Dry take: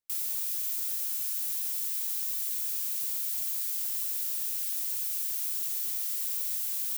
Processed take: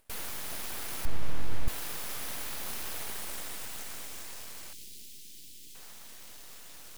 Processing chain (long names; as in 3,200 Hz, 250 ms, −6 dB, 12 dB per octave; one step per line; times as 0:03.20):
upward compression, threshold −54 dBFS
band-pass filter sweep 4,900 Hz → 1,500 Hz, 0:02.96–0:05.31
delay with a high-pass on its return 394 ms, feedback 71%, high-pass 3,900 Hz, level −9 dB
full-wave rectification
0:01.05–0:01.68: RIAA equalisation playback
0:04.73–0:05.75: Chebyshev band-stop filter 300–3,300 Hz, order 2
level +12 dB